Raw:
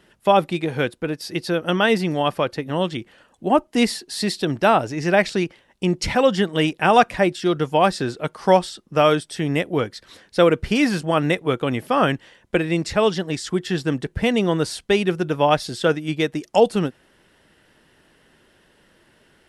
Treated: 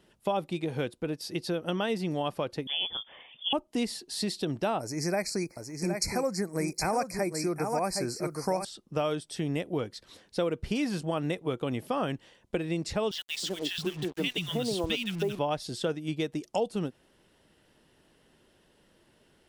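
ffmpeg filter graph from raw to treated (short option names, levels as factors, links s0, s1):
-filter_complex "[0:a]asettb=1/sr,asplit=3[s0][s1][s2];[s0]atrim=end=2.674[s3];[s1]atrim=start=2.67:end=3.53,asetpts=PTS-STARTPTS,afade=t=in:d=0.004:c=qsin,afade=t=out:st=0.856:d=0.004:c=qsin,lowpass=f=3100:t=q:w=0.5098,lowpass=f=3100:t=q:w=0.6013,lowpass=f=3100:t=q:w=0.9,lowpass=f=3100:t=q:w=2.563,afreqshift=-3600,acompressor=mode=upward:threshold=0.0316:ratio=2.5:attack=3.2:release=140:knee=2.83:detection=peak[s4];[s2]atrim=start=3.526[s5];[s3][s4]acrossfade=d=0.004:c1=hsin:c2=qsin[s6];[s6][s5]acrossfade=d=0.004:c1=qsin:c2=hsin,asettb=1/sr,asplit=3[s7][s8][s9];[s7]atrim=end=4.804[s10];[s8]atrim=start=4.8:end=8.65,asetpts=PTS-STARTPTS,afade=t=in:d=0.004:c=qsin,afade=t=out:st=3.846:d=0.004:c=qsin,asuperstop=centerf=3200:order=20:qfactor=2,aemphasis=mode=production:type=75fm,aecho=1:1:765:0.422,atrim=end_sample=169785[s11];[s9]atrim=start=8.646[s12];[s10][s11]acrossfade=d=0.004:c1=hsin:c2=qsin[s13];[s13][s12]acrossfade=d=0.004:c1=qsin:c2=hsin,asettb=1/sr,asplit=3[s14][s15][s16];[s14]atrim=end=13.114[s17];[s15]atrim=start=13.11:end=15.39,asetpts=PTS-STARTPTS,afade=t=in:d=0.004:c=qsin,afade=t=out:st=2.276:d=0.004:c=qsin,equalizer=f=3100:t=o:w=0.97:g=10,acrossover=split=210|1300[s18][s19][s20];[s19]adelay=320[s21];[s18]adelay=670[s22];[s22][s21][s20]amix=inputs=3:normalize=0,atrim=end_sample=100548,acrusher=bits=5:mix=0:aa=0.5[s23];[s16]atrim=start=15.386[s24];[s17][s23]acrossfade=d=0.004:c1=hsin:c2=qsin[s25];[s25][s24]acrossfade=d=0.004:c1=qsin:c2=hsin,equalizer=f=1700:w=1.3:g=-6.5,acompressor=threshold=0.0794:ratio=3,volume=0.531"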